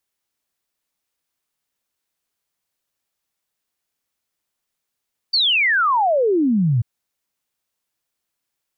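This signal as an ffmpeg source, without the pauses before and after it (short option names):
-f lavfi -i "aevalsrc='0.2*clip(min(t,1.49-t)/0.01,0,1)*sin(2*PI*4700*1.49/log(110/4700)*(exp(log(110/4700)*t/1.49)-1))':d=1.49:s=44100"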